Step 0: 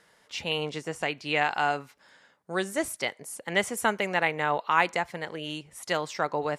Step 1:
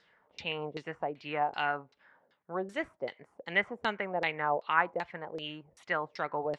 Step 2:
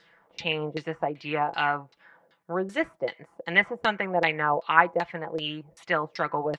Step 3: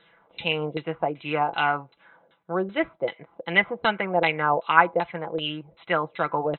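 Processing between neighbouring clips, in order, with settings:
auto-filter low-pass saw down 2.6 Hz 440–4,700 Hz; level −7.5 dB
comb filter 6 ms, depth 49%; level +6 dB
linear-phase brick-wall low-pass 4,100 Hz; notch filter 1,800 Hz, Q 7.2; level +2.5 dB

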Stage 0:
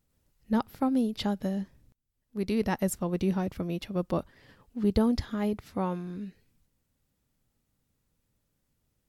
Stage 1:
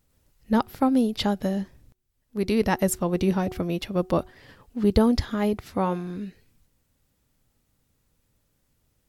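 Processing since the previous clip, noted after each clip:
parametric band 190 Hz −3 dB 1.1 octaves
hum removal 369.9 Hz, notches 2
level +7 dB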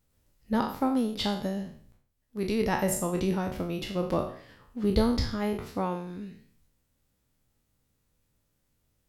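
peak hold with a decay on every bin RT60 0.53 s
level −6 dB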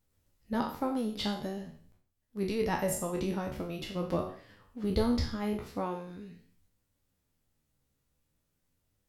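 flanger 0.44 Hz, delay 9.7 ms, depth 5 ms, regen +45%

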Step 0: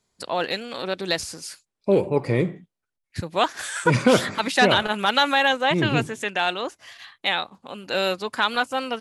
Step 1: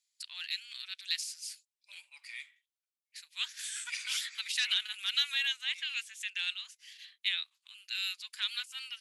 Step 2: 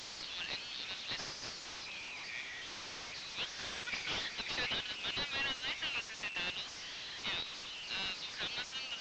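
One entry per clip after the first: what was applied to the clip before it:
inverse Chebyshev high-pass filter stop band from 390 Hz, stop band 80 dB; level −5.5 dB
linear delta modulator 32 kbit/s, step −39 dBFS

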